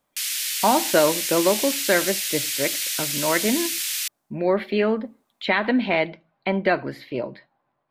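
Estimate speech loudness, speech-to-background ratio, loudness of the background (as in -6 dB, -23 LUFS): -23.5 LUFS, 0.5 dB, -24.0 LUFS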